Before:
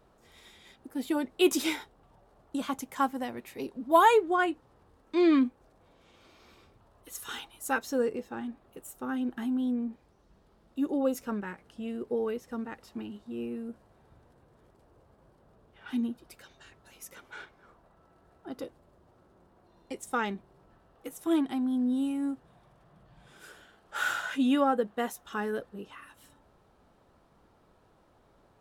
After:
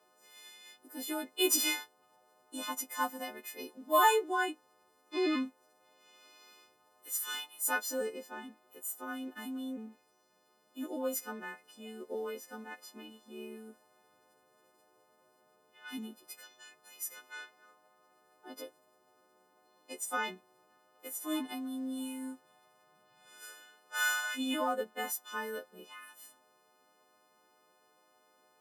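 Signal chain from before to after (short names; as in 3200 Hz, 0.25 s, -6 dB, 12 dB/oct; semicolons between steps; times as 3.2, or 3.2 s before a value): frequency quantiser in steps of 3 st; HPF 310 Hz 12 dB/oct; gain -5.5 dB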